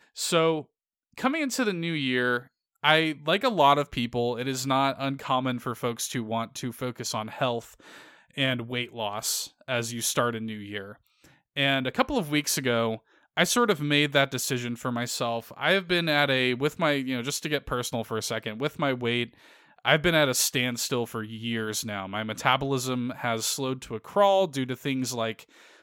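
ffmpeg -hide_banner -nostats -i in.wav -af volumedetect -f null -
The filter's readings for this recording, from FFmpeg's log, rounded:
mean_volume: -27.5 dB
max_volume: -5.3 dB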